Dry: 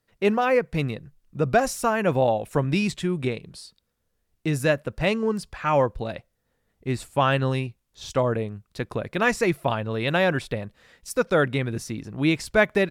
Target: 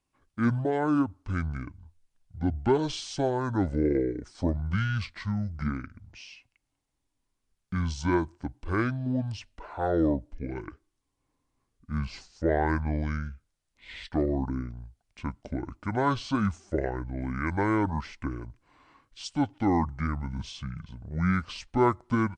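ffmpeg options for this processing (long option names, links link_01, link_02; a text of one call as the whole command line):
ffmpeg -i in.wav -af "asetrate=25442,aresample=44100,volume=-5dB" out.wav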